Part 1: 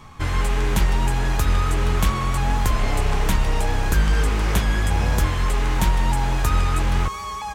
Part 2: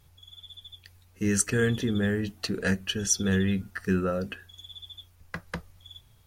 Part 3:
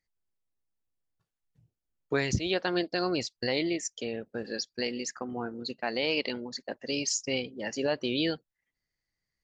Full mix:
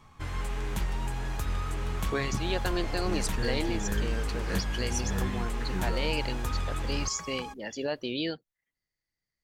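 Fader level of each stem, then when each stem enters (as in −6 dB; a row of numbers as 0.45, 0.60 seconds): −12.0, −10.5, −3.0 decibels; 0.00, 1.85, 0.00 seconds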